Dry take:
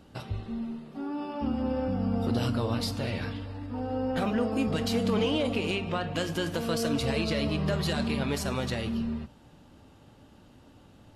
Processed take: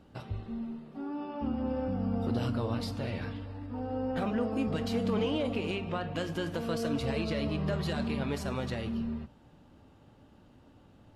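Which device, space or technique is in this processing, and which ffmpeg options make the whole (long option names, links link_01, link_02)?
behind a face mask: -filter_complex "[0:a]asettb=1/sr,asplit=3[link_01][link_02][link_03];[link_01]atrim=end=1.184[link_04];[link_02]atrim=start=1.18:end=1.68,asetpts=PTS-STARTPTS,afade=type=in:duration=0.004:curve=qsin,afade=type=out:start_time=0.496:duration=0.004:curve=qsin,lowpass=5300[link_05];[link_03]atrim=start=1.676[link_06];[link_04][link_05]acrossfade=duration=0.004:curve1=hsin:curve2=qsin[link_07];[link_07][link_06]acrossfade=duration=0.004:curve1=qsin:curve2=hsin,highshelf=frequency=3400:gain=-8,volume=-3dB"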